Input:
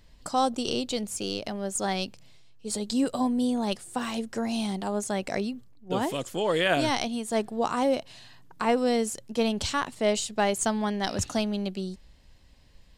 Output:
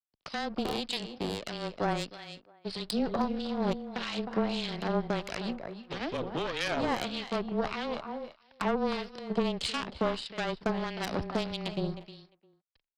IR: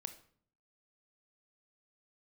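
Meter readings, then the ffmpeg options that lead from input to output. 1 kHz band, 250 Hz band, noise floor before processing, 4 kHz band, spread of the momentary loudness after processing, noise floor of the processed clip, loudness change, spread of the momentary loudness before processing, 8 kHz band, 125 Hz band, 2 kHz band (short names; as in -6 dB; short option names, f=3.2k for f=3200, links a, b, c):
-5.0 dB, -5.0 dB, -55 dBFS, -3.0 dB, 10 LU, -74 dBFS, -5.0 dB, 7 LU, -14.5 dB, -1.0 dB, -3.5 dB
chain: -filter_complex "[0:a]aresample=11025,aeval=exprs='sgn(val(0))*max(abs(val(0))-0.00562,0)':c=same,aresample=44100,acompressor=threshold=-28dB:ratio=10,asplit=2[a][b];[b]aecho=0:1:311:0.299[c];[a][c]amix=inputs=2:normalize=0,aeval=exprs='0.15*(cos(1*acos(clip(val(0)/0.15,-1,1)))-cos(1*PI/2))+0.015*(cos(5*acos(clip(val(0)/0.15,-1,1)))-cos(5*PI/2))+0.0531*(cos(6*acos(clip(val(0)/0.15,-1,1)))-cos(6*PI/2))+0.0133*(cos(8*acos(clip(val(0)/0.15,-1,1)))-cos(8*PI/2))':c=same,lowshelf=f=80:g=-8.5,asplit=2[d][e];[e]adelay=350,highpass=300,lowpass=3.4k,asoftclip=type=hard:threshold=-23.5dB,volume=-18dB[f];[d][f]amix=inputs=2:normalize=0,acrossover=split=1700[g][h];[g]aeval=exprs='val(0)*(1-0.7/2+0.7/2*cos(2*PI*1.6*n/s))':c=same[i];[h]aeval=exprs='val(0)*(1-0.7/2-0.7/2*cos(2*PI*1.6*n/s))':c=same[j];[i][j]amix=inputs=2:normalize=0,afreqshift=-18,volume=1dB"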